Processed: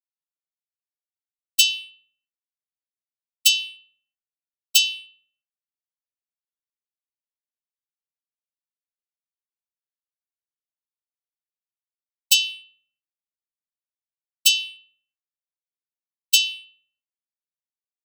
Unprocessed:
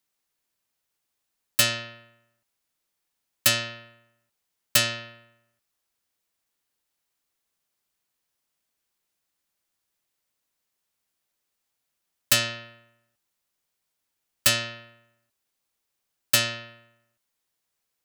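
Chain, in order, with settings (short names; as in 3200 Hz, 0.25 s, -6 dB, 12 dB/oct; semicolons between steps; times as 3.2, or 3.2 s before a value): spectral contrast raised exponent 1.9; gate with hold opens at -54 dBFS; elliptic high-pass 2800 Hz, stop band 40 dB; comb 4.9 ms, depth 64%; in parallel at -5.5 dB: crossover distortion -44 dBFS; on the sum: mismatched tape noise reduction decoder only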